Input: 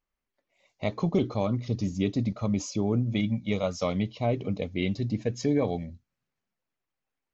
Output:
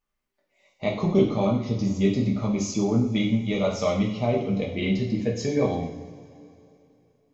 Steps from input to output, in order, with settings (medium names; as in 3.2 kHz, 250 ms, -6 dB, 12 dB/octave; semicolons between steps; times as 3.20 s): two-slope reverb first 0.63 s, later 3 s, from -18 dB, DRR -2 dB